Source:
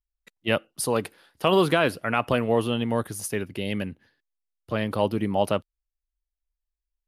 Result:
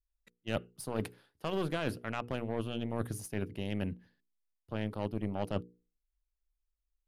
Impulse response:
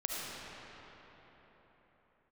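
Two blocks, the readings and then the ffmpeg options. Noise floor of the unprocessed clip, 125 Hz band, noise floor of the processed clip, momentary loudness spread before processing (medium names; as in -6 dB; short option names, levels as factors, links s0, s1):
under -85 dBFS, -7.0 dB, under -85 dBFS, 9 LU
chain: -af "lowshelf=f=290:g=10,aeval=exprs='0.562*(cos(1*acos(clip(val(0)/0.562,-1,1)))-cos(1*PI/2))+0.0501*(cos(4*acos(clip(val(0)/0.562,-1,1)))-cos(4*PI/2))+0.0316*(cos(7*acos(clip(val(0)/0.562,-1,1)))-cos(7*PI/2))':c=same,areverse,acompressor=threshold=0.0501:ratio=6,areverse,bandreject=f=60:t=h:w=6,bandreject=f=120:t=h:w=6,bandreject=f=180:t=h:w=6,bandreject=f=240:t=h:w=6,bandreject=f=300:t=h:w=6,bandreject=f=360:t=h:w=6,bandreject=f=420:t=h:w=6,bandreject=f=480:t=h:w=6,volume=0.631"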